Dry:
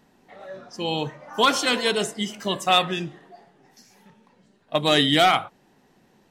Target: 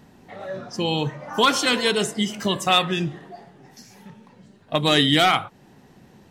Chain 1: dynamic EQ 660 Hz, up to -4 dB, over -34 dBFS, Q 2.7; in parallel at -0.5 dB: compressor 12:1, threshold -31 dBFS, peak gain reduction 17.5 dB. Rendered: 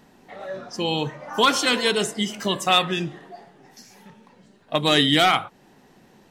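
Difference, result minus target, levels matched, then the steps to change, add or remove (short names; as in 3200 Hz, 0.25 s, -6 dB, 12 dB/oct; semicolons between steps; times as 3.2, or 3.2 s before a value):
125 Hz band -3.0 dB
add after compressor: bell 92 Hz +14.5 dB 2.5 oct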